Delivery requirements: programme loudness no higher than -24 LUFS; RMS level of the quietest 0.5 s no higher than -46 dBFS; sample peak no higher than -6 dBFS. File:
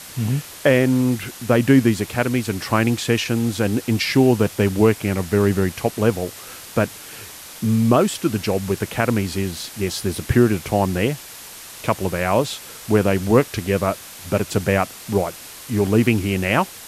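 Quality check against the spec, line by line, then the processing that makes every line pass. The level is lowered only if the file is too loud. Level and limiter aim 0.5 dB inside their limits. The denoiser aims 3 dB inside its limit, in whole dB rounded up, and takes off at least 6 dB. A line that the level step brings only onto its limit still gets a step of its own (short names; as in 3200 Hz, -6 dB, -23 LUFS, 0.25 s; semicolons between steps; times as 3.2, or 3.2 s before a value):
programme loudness -20.0 LUFS: fail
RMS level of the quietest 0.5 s -38 dBFS: fail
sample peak -3.0 dBFS: fail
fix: denoiser 7 dB, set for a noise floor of -38 dBFS; gain -4.5 dB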